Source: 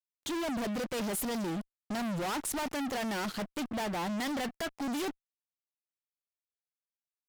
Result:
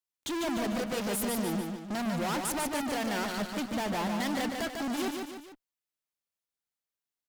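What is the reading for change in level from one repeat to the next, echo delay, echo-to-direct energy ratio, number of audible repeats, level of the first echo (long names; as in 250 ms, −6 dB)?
−6.5 dB, 147 ms, −3.5 dB, 3, −4.5 dB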